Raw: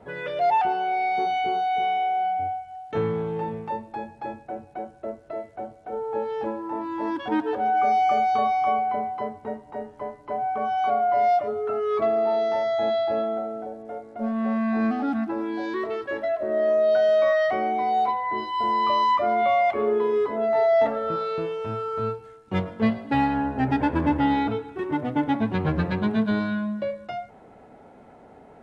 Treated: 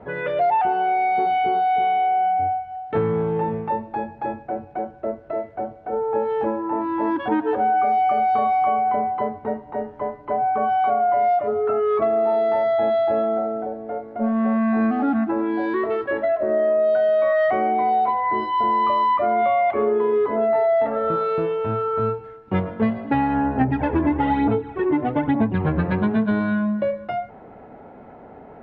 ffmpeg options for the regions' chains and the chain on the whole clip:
-filter_complex "[0:a]asettb=1/sr,asplit=3[s0][s1][s2];[s0]atrim=end=23.614[s3];[s1]atrim=start=23.61:end=25.62,asetpts=PTS-STARTPTS,afade=t=in:d=0.004:c=qsin,afade=t=out:st=2.006:d=0.004:c=qsin,equalizer=f=1400:t=o:w=0.27:g=-4,aphaser=in_gain=1:out_gain=1:delay=3:decay=0.56:speed=1.1:type=sinusoidal[s4];[s2]atrim=start=25.616[s5];[s3][s4]acrossfade=d=0.004:c1=hsin:c2=qsin[s6];[s6][s5]acrossfade=d=0.004:c1=qsin:c2=hsin,lowpass=2200,acompressor=threshold=0.0708:ratio=6,volume=2.11"

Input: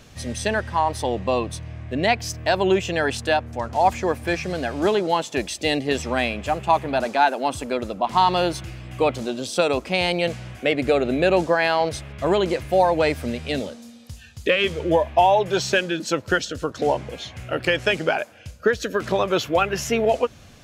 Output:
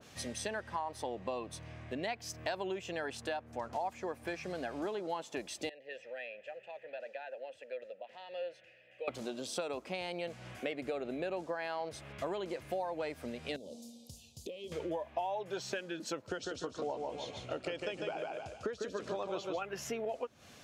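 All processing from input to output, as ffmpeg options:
-filter_complex "[0:a]asettb=1/sr,asplit=3[s0][s1][s2];[s0]atrim=end=5.694[s3];[s1]atrim=start=5.69:end=9.08,asetpts=PTS-STARTPTS,afade=t=in:d=0.004:c=qsin,afade=t=out:st=3.386:d=0.004:c=qsin,equalizer=f=320:t=o:w=1.1:g=-10,acompressor=threshold=0.0398:ratio=1.5:attack=3.2:release=140:knee=1:detection=peak,asplit=3[s4][s5][s6];[s4]bandpass=f=530:t=q:w=8,volume=1[s7];[s5]bandpass=f=1840:t=q:w=8,volume=0.501[s8];[s6]bandpass=f=2480:t=q:w=8,volume=0.355[s9];[s7][s8][s9]amix=inputs=3:normalize=0[s10];[s2]atrim=start=9.076[s11];[s3][s10]acrossfade=d=0.004:c1=hsin:c2=qsin[s12];[s12][s11]acrossfade=d=0.004:c1=qsin:c2=hsin,asettb=1/sr,asplit=3[s13][s14][s15];[s13]atrim=end=13.564[s16];[s14]atrim=start=13.56:end=14.72,asetpts=PTS-STARTPTS,afade=t=in:d=0.004:c=qsin,afade=t=out:st=1.156:d=0.004:c=qsin,acompressor=threshold=0.0282:ratio=10:attack=3.2:release=140:knee=1:detection=peak,asuperstop=centerf=1600:order=4:qfactor=0.5[s17];[s15]atrim=start=14.716[s18];[s16][s17]acrossfade=d=0.004:c1=hsin:c2=qsin[s19];[s19][s18]acrossfade=d=0.004:c1=qsin:c2=hsin,asettb=1/sr,asplit=3[s20][s21][s22];[s20]atrim=end=16.274[s23];[s21]atrim=start=16.27:end=19.62,asetpts=PTS-STARTPTS,afade=t=in:d=0.004:c=qsin,afade=t=out:st=3.346:d=0.004:c=qsin,lowpass=f=9300:w=0.5412,lowpass=f=9300:w=1.3066,equalizer=f=1700:w=2.2:g=-8,aecho=1:1:149|298|447|596:0.562|0.174|0.054|0.0168,atrim=end_sample=147735[s24];[s22]atrim=start=19.616[s25];[s23][s24]acrossfade=d=0.004:c1=hsin:c2=qsin[s26];[s26][s25]acrossfade=d=0.004:c1=qsin:c2=hsin,acompressor=threshold=0.0355:ratio=6,highpass=f=300:p=1,adynamicequalizer=threshold=0.00447:dfrequency=1600:dqfactor=0.7:tfrequency=1600:tqfactor=0.7:attack=5:release=100:ratio=0.375:range=2.5:mode=cutabove:tftype=highshelf,volume=0.596"

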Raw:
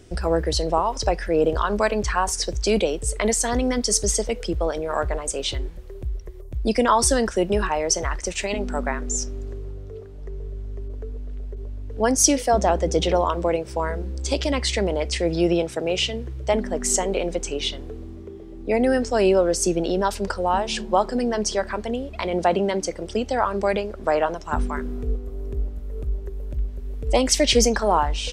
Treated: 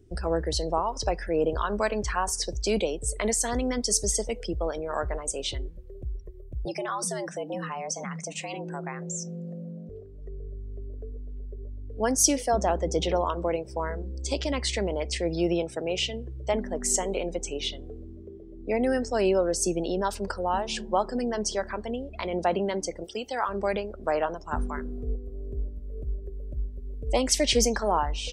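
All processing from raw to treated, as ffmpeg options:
-filter_complex "[0:a]asettb=1/sr,asplit=3[s0][s1][s2];[s0]atrim=end=6.654[s3];[s1]atrim=start=6.65:end=9.89,asetpts=PTS-STARTPTS,afade=t=in:d=0.004:c=qsin,afade=t=out:st=3.236:d=0.004:c=qsin,equalizer=f=2400:t=o:w=0.22:g=2.5,acompressor=threshold=0.0398:ratio=2:attack=3.2:release=140:knee=1:detection=peak,afreqshift=120[s4];[s2]atrim=start=9.886[s5];[s3][s4]acrossfade=d=0.004:c1=hsin:c2=qsin[s6];[s6][s5]acrossfade=d=0.004:c1=qsin:c2=hsin,asettb=1/sr,asplit=3[s7][s8][s9];[s7]atrim=end=23.044[s10];[s8]atrim=start=23.04:end=23.49,asetpts=PTS-STARTPTS,afade=t=in:d=0.004:c=qsin,afade=t=out:st=0.446:d=0.004:c=qsin,acrossover=split=4000[s11][s12];[s12]acompressor=threshold=0.00178:ratio=4:attack=1:release=60[s13];[s11][s13]amix=inputs=2:normalize=0,aemphasis=mode=production:type=riaa,bandreject=f=620:w=7.2[s14];[s9]atrim=start=23.486[s15];[s10][s14]acrossfade=d=0.004:c1=hsin:c2=qsin[s16];[s16][s15]acrossfade=d=0.004:c1=qsin:c2=hsin,afftdn=nr=16:nf=-43,highshelf=f=12000:g=9.5,volume=0.531"

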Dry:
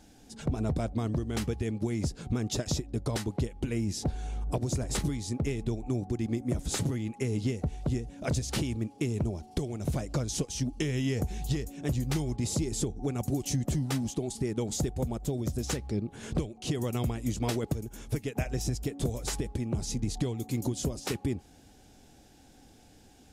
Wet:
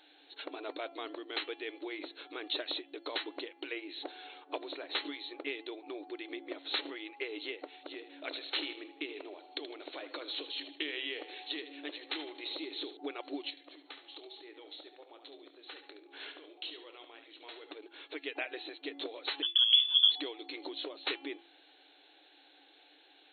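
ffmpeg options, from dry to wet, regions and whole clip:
-filter_complex "[0:a]asettb=1/sr,asplit=3[s0][s1][s2];[s0]atrim=end=7.804[s3];[s1]atrim=start=7.8:end=12.97,asetpts=PTS-STARTPTS,afade=t=in:d=0.004:c=qsin,afade=t=out:st=5.166:d=0.004:c=qsin,acrossover=split=270|3000[s4][s5][s6];[s5]acompressor=threshold=0.0158:ratio=3:attack=3.2:release=140:knee=2.83:detection=peak[s7];[s4][s7][s6]amix=inputs=3:normalize=0,aecho=1:1:78|156|234|312:0.251|0.111|0.0486|0.0214,atrim=end_sample=227997[s8];[s2]atrim=start=12.966[s9];[s3][s8]acrossfade=d=0.004:c1=hsin:c2=qsin[s10];[s10][s9]acrossfade=d=0.004:c1=qsin:c2=hsin,asettb=1/sr,asplit=3[s11][s12][s13];[s11]atrim=end=13.504[s14];[s12]atrim=start=13.5:end=17.72,asetpts=PTS-STARTPTS,afade=t=in:d=0.004:c=qsin,afade=t=out:st=4.216:d=0.004:c=qsin,acompressor=threshold=0.0112:ratio=16:attack=3.2:release=140:knee=1:detection=peak,asplit=2[s15][s16];[s16]adelay=26,volume=0.266[s17];[s15][s17]amix=inputs=2:normalize=0,atrim=end_sample=186102,aecho=1:1:71|142|213|284:0.355|0.114|0.0363|0.0116,atrim=end_sample=186102[s18];[s13]atrim=start=17.716[s19];[s14][s18]acrossfade=d=0.004:c1=hsin:c2=qsin[s20];[s20][s19]acrossfade=d=0.004:c1=qsin:c2=hsin,asettb=1/sr,asplit=3[s21][s22][s23];[s21]atrim=end=19.424[s24];[s22]atrim=start=19.42:end=20.12,asetpts=PTS-STARTPTS,afade=t=in:d=0.004:c=qsin,afade=t=out:st=0.696:d=0.004:c=qsin,agate=range=0.0224:threshold=0.0224:ratio=3:release=100:detection=peak,lowpass=f=3000:t=q:w=0.5098,lowpass=f=3000:t=q:w=0.6013,lowpass=f=3000:t=q:w=0.9,lowpass=f=3000:t=q:w=2.563,afreqshift=-3500[s25];[s23]atrim=start=20.116[s26];[s24][s25]acrossfade=d=0.004:c1=hsin:c2=qsin[s27];[s27][s26]acrossfade=d=0.004:c1=qsin:c2=hsin,tiltshelf=f=1400:g=-8.5,bandreject=f=340.2:t=h:w=4,bandreject=f=680.4:t=h:w=4,bandreject=f=1020.6:t=h:w=4,bandreject=f=1360.8:t=h:w=4,bandreject=f=1701:t=h:w=4,bandreject=f=2041.2:t=h:w=4,bandreject=f=2381.4:t=h:w=4,bandreject=f=2721.6:t=h:w=4,bandreject=f=3061.8:t=h:w=4,bandreject=f=3402:t=h:w=4,afftfilt=real='re*between(b*sr/4096,270,4300)':imag='im*between(b*sr/4096,270,4300)':win_size=4096:overlap=0.75,volume=1.12"

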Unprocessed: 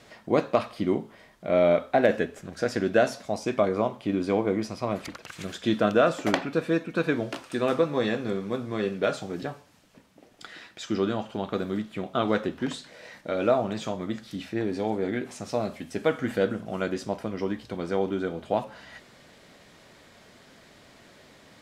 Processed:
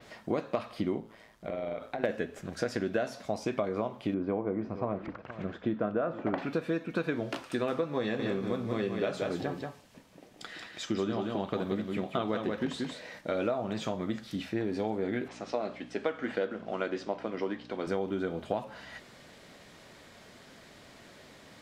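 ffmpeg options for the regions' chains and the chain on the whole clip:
-filter_complex "[0:a]asettb=1/sr,asplit=3[s0][s1][s2];[s0]atrim=end=1.004[s3];[s1]atrim=start=1:end=2.04,asetpts=PTS-STARTPTS,afade=t=in:d=0.004:c=qsin,afade=t=out:st=1.036:d=0.004:c=qsin,acompressor=threshold=0.0355:ratio=8:attack=3.2:release=140:knee=1:detection=peak,tremolo=f=110:d=0.621[s4];[s2]atrim=start=2.036[s5];[s3][s4]acrossfade=d=0.004:c1=hsin:c2=qsin[s6];[s6][s5]acrossfade=d=0.004:c1=qsin:c2=hsin,asettb=1/sr,asplit=3[s7][s8][s9];[s7]atrim=end=4.144[s10];[s8]atrim=start=4.14:end=6.38,asetpts=PTS-STARTPTS,afade=t=in:d=0.004:c=qsin,afade=t=out:st=2.236:d=0.004:c=qsin,lowpass=1400,aecho=1:1:465:0.133,atrim=end_sample=98784[s11];[s9]atrim=start=6.376[s12];[s10][s11]acrossfade=d=0.004:c1=hsin:c2=qsin[s13];[s13][s12]acrossfade=d=0.004:c1=qsin:c2=hsin,asettb=1/sr,asplit=3[s14][s15][s16];[s14]atrim=end=8.014[s17];[s15]atrim=start=8.01:end=13.19,asetpts=PTS-STARTPTS,afade=t=in:d=0.004:c=qsin,afade=t=out:st=5.176:d=0.004:c=qsin,bandreject=f=1400:w=19,aecho=1:1:181:0.531,atrim=end_sample=228438[s18];[s16]atrim=start=13.186[s19];[s17][s18]acrossfade=d=0.004:c1=hsin:c2=qsin[s20];[s20][s19]acrossfade=d=0.004:c1=qsin:c2=hsin,asettb=1/sr,asplit=3[s21][s22][s23];[s21]atrim=end=15.284[s24];[s22]atrim=start=15.28:end=17.87,asetpts=PTS-STARTPTS,afade=t=in:d=0.004:c=qsin,afade=t=out:st=2.586:d=0.004:c=qsin,aeval=exprs='val(0)+0.0126*(sin(2*PI*60*n/s)+sin(2*PI*2*60*n/s)/2+sin(2*PI*3*60*n/s)/3+sin(2*PI*4*60*n/s)/4+sin(2*PI*5*60*n/s)/5)':c=same,acrusher=bits=8:mode=log:mix=0:aa=0.000001,highpass=300,lowpass=4300[s25];[s23]atrim=start=17.866[s26];[s24][s25]acrossfade=d=0.004:c1=hsin:c2=qsin[s27];[s27][s26]acrossfade=d=0.004:c1=qsin:c2=hsin,adynamicequalizer=threshold=0.00178:dfrequency=8600:dqfactor=0.73:tfrequency=8600:tqfactor=0.73:attack=5:release=100:ratio=0.375:range=3:mode=cutabove:tftype=bell,acompressor=threshold=0.0447:ratio=6"

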